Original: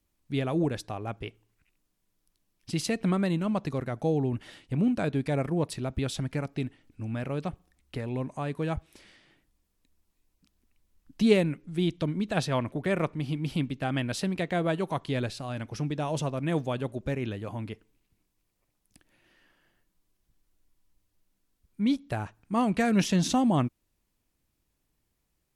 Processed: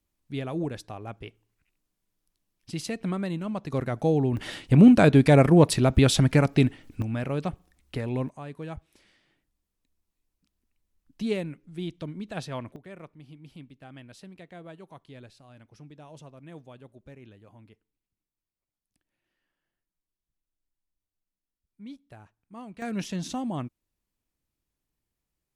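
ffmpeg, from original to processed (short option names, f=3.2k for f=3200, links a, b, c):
-af "asetnsamples=n=441:p=0,asendcmd='3.72 volume volume 3.5dB;4.37 volume volume 11.5dB;7.02 volume volume 3dB;8.29 volume volume -7dB;12.76 volume volume -17dB;22.82 volume volume -7.5dB',volume=-3.5dB"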